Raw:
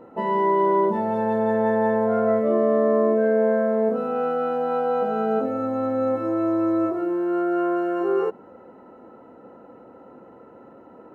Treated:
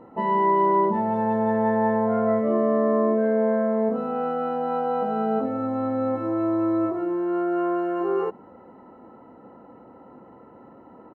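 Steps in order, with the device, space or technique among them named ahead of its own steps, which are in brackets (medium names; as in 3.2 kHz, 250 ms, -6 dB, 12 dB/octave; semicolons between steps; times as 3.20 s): behind a face mask (treble shelf 3 kHz -8 dB); comb 1 ms, depth 33%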